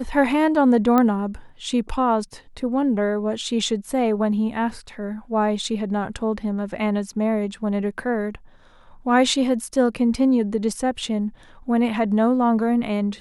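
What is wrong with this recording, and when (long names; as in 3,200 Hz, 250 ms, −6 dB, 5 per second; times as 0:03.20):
0:00.98: click −8 dBFS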